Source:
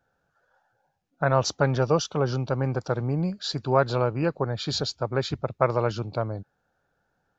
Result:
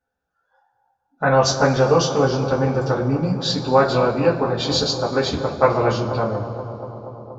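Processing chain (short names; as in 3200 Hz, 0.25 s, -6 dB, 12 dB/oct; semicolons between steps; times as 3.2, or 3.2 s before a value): spectral noise reduction 14 dB; analogue delay 0.238 s, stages 2048, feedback 78%, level -12.5 dB; two-slope reverb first 0.2 s, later 2.3 s, from -21 dB, DRR -5.5 dB; gain +1 dB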